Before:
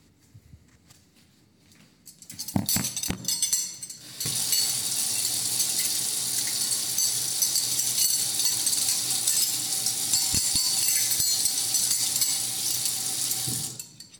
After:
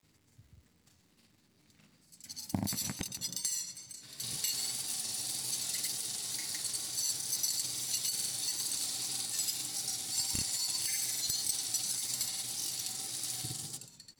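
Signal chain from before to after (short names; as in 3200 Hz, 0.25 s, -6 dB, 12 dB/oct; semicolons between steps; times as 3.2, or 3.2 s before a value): grains 0.1 s, grains 20/s, pitch spread up and down by 0 st; wow and flutter 37 cents; crackle 370/s -51 dBFS; gain -8 dB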